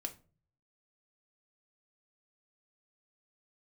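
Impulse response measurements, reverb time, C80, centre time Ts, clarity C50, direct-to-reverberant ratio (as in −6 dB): non-exponential decay, 21.5 dB, 7 ms, 15.0 dB, 4.0 dB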